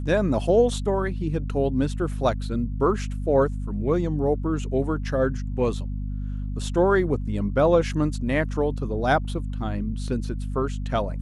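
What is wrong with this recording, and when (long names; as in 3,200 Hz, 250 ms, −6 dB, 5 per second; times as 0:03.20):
mains hum 50 Hz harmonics 5 −29 dBFS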